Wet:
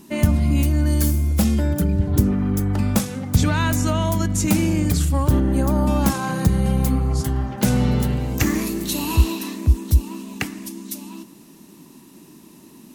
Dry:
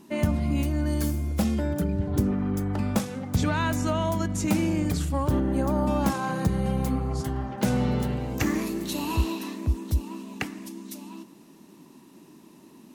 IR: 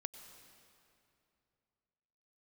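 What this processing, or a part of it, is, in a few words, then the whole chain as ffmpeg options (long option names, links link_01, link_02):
smiley-face EQ: -af "lowshelf=frequency=90:gain=7,equalizer=frequency=660:width_type=o:width=1.9:gain=-3,highshelf=frequency=6300:gain=7.5,volume=5dB"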